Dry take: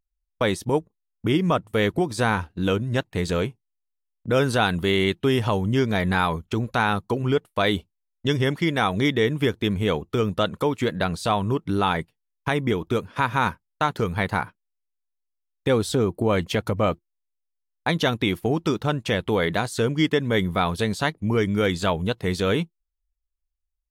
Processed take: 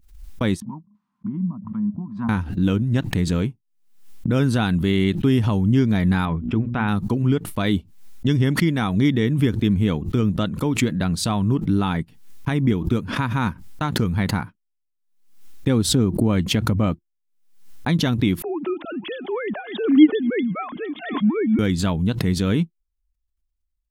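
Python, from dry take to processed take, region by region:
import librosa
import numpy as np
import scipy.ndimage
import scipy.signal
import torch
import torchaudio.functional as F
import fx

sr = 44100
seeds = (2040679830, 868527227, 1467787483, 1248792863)

y = fx.chain(x, sr, fx.double_bandpass(hz=460.0, octaves=2.3),
    fx.env_lowpass_down(base_hz=490.0, full_db=-28.0), at=(0.6, 2.29))
y = fx.chain(y, sr, fx.savgol(points=25),
    fx.hum_notches(base_hz=60, count=6), at=(6.25, 6.88))
y = fx.chain(y, sr, fx.sine_speech(),
    fx.echo_thinned(ms=240, feedback_pct=69, hz=570.0, wet_db=-23.0), at=(18.42, 21.59))
y = fx.low_shelf_res(y, sr, hz=350.0, db=8.5, q=1.5)
y = fx.pre_swell(y, sr, db_per_s=82.0)
y = F.gain(torch.from_numpy(y), -4.0).numpy()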